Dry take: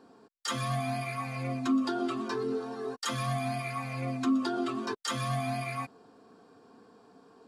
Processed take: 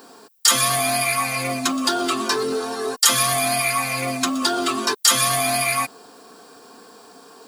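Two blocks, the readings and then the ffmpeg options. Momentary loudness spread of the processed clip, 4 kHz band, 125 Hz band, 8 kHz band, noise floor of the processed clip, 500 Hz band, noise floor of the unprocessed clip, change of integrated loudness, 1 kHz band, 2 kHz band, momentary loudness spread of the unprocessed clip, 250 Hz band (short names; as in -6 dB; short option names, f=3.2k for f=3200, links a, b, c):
7 LU, +19.0 dB, +0.5 dB, +24.5 dB, -47 dBFS, +10.0 dB, -59 dBFS, +13.0 dB, +12.0 dB, +15.5 dB, 6 LU, +4.0 dB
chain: -af "apsyclip=28dB,aemphasis=mode=production:type=riaa,volume=-14.5dB"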